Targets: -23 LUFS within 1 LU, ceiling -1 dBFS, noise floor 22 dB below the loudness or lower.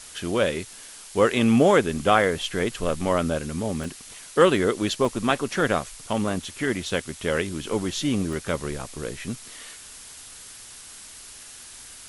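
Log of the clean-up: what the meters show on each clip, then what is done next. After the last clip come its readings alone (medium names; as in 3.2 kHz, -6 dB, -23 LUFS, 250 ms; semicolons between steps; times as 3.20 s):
dropouts 4; longest dropout 1.8 ms; noise floor -44 dBFS; noise floor target -46 dBFS; loudness -24.0 LUFS; peak level -5.0 dBFS; loudness target -23.0 LUFS
-> interpolate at 1.97/3.84/5.05/8.33 s, 1.8 ms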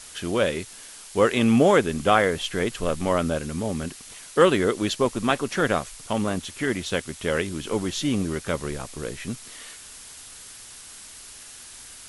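dropouts 0; noise floor -44 dBFS; noise floor target -47 dBFS
-> noise print and reduce 6 dB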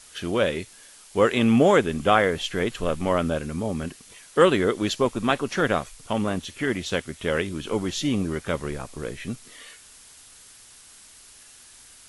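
noise floor -50 dBFS; loudness -24.0 LUFS; peak level -5.0 dBFS; loudness target -23.0 LUFS
-> trim +1 dB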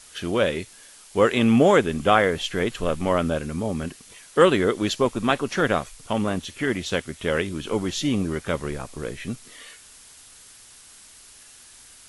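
loudness -23.5 LUFS; peak level -4.0 dBFS; noise floor -49 dBFS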